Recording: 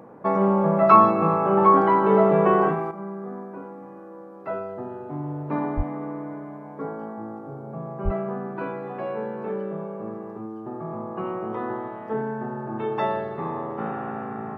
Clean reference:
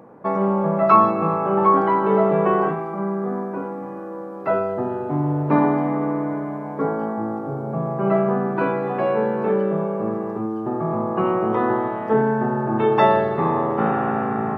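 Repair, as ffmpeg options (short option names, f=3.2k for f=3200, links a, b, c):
-filter_complex "[0:a]asplit=3[a][b][c];[a]afade=t=out:st=5.76:d=0.02[d];[b]highpass=f=140:w=0.5412,highpass=f=140:w=1.3066,afade=t=in:st=5.76:d=0.02,afade=t=out:st=5.88:d=0.02[e];[c]afade=t=in:st=5.88:d=0.02[f];[d][e][f]amix=inputs=3:normalize=0,asplit=3[g][h][i];[g]afade=t=out:st=8.04:d=0.02[j];[h]highpass=f=140:w=0.5412,highpass=f=140:w=1.3066,afade=t=in:st=8.04:d=0.02,afade=t=out:st=8.16:d=0.02[k];[i]afade=t=in:st=8.16:d=0.02[l];[j][k][l]amix=inputs=3:normalize=0,asetnsamples=n=441:p=0,asendcmd='2.91 volume volume 9.5dB',volume=0dB"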